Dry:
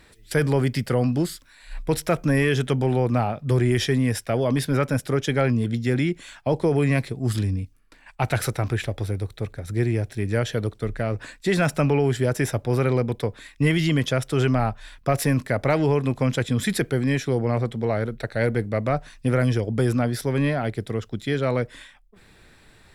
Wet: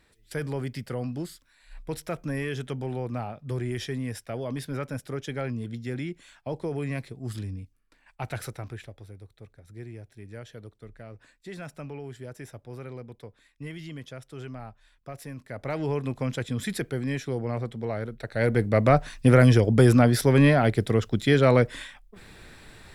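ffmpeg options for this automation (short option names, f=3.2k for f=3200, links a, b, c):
-af "volume=12.5dB,afade=t=out:st=8.39:d=0.61:silence=0.398107,afade=t=in:st=15.41:d=0.53:silence=0.266073,afade=t=in:st=18.23:d=0.65:silence=0.266073"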